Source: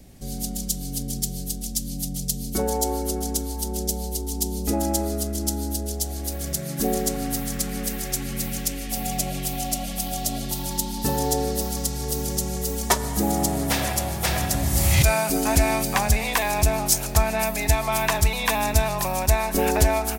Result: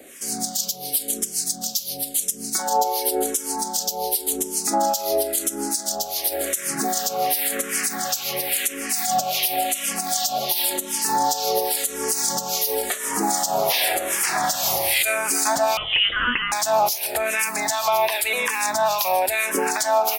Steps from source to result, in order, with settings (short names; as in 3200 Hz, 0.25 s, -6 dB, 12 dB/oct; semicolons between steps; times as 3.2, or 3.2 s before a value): HPF 570 Hz 12 dB/oct; compressor 12:1, threshold -29 dBFS, peak gain reduction 15 dB; harmonic tremolo 2.5 Hz, depth 70%, crossover 1500 Hz; 15.77–16.52 inverted band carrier 3700 Hz; maximiser +25.5 dB; endless phaser -0.93 Hz; gain -6.5 dB